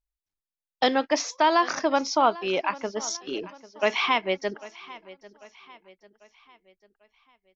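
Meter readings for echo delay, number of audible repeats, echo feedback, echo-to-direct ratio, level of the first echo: 0.795 s, 3, 46%, -18.0 dB, -19.0 dB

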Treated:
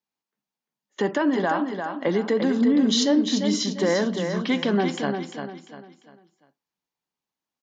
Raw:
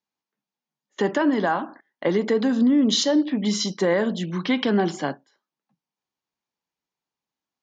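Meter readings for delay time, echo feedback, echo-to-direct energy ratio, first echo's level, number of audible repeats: 0.347 s, 35%, -6.0 dB, -6.5 dB, 4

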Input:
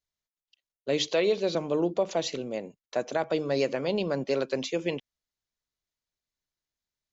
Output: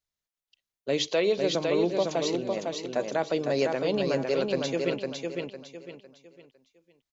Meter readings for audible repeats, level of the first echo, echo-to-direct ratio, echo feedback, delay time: 4, -4.0 dB, -3.5 dB, 32%, 0.505 s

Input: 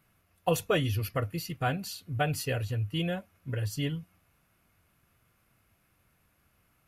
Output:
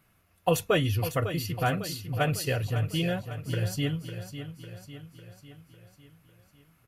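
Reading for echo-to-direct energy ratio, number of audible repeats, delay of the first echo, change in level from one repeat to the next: -9.0 dB, 5, 0.551 s, -5.5 dB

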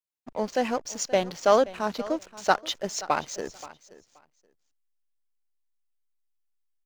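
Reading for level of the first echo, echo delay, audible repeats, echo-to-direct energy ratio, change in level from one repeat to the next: -18.0 dB, 0.527 s, 2, -18.0 dB, -15.5 dB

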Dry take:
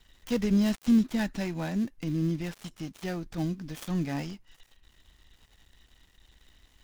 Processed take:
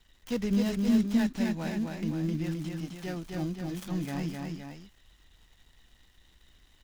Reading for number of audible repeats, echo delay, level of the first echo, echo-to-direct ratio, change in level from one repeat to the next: 2, 0.26 s, -3.5 dB, -2.0 dB, -4.5 dB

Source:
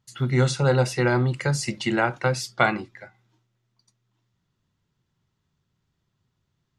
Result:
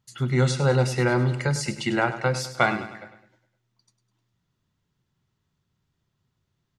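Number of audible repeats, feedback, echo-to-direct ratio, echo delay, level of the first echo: 4, 50%, -11.5 dB, 0.102 s, -12.5 dB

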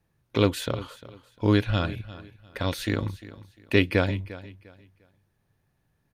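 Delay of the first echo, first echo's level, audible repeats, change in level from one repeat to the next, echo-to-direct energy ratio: 0.35 s, -17.0 dB, 2, -11.5 dB, -16.5 dB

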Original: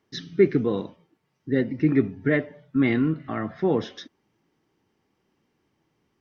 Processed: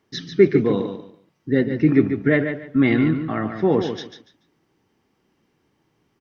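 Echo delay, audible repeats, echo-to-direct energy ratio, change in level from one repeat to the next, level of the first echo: 0.144 s, 3, -8.0 dB, -13.0 dB, -8.0 dB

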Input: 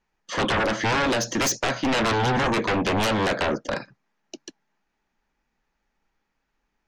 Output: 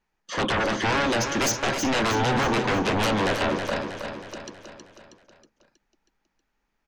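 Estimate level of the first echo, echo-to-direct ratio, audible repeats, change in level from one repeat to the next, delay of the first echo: -7.0 dB, -5.5 dB, 6, -5.5 dB, 0.319 s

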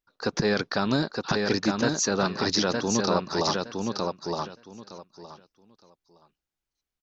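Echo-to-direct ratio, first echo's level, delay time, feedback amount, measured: -3.5 dB, -3.5 dB, 0.915 s, 19%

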